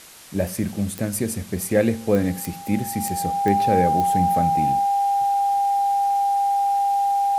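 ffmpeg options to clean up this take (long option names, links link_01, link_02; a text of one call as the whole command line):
ffmpeg -i in.wav -af "adeclick=threshold=4,bandreject=frequency=800:width=30,afwtdn=0.0071" out.wav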